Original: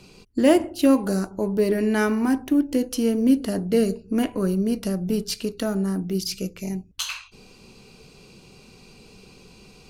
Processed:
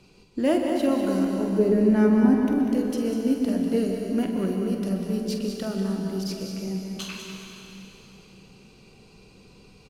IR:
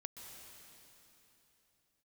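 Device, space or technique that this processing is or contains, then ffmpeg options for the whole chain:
swimming-pool hall: -filter_complex "[0:a]asettb=1/sr,asplit=3[a][b][c];[a]atrim=end=1.584[d];[b]atrim=start=1.58:end=2.46,asetpts=PTS-STARTPTS,afade=t=in:d=0.004:c=qsin,afade=t=out:st=0.876:d=0.004:c=qsin,tiltshelf=f=970:g=7[e];[c]atrim=start=2.456[f];[d][e]acrossfade=d=0.004:c1=hsin:c2=qsin[g];[g][f]acrossfade=d=0.004:c1=qsin:c2=hsin,aecho=1:1:46.65|195.3:0.316|0.355[h];[1:a]atrim=start_sample=2205[i];[h][i]afir=irnorm=-1:irlink=0,highshelf=f=4.5k:g=-5.5"

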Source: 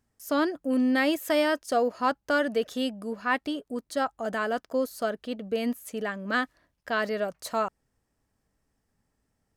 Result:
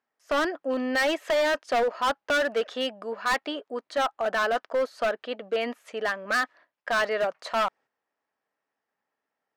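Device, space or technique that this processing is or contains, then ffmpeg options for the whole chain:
walkie-talkie: -af "highpass=600,lowpass=2.8k,asoftclip=type=hard:threshold=-29dB,agate=range=-8dB:threshold=-59dB:ratio=16:detection=peak,volume=8.5dB"

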